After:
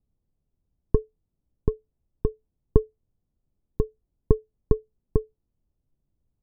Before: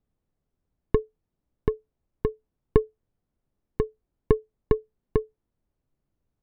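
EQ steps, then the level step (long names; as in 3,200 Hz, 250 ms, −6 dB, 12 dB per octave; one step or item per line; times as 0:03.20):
moving average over 21 samples
low-shelf EQ 210 Hz +8.5 dB
−3.5 dB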